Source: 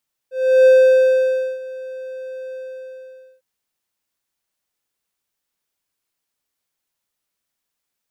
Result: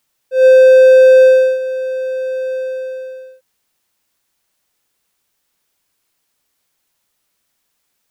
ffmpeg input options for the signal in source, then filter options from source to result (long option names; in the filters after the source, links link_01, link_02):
-f lavfi -i "aevalsrc='0.596*(1-4*abs(mod(519*t+0.25,1)-0.5))':duration=3.103:sample_rate=44100,afade=type=in:duration=0.348,afade=type=out:start_time=0.348:duration=0.927:silence=0.0841,afade=type=out:start_time=2.23:duration=0.873"
-af "alimiter=level_in=11dB:limit=-1dB:release=50:level=0:latency=1"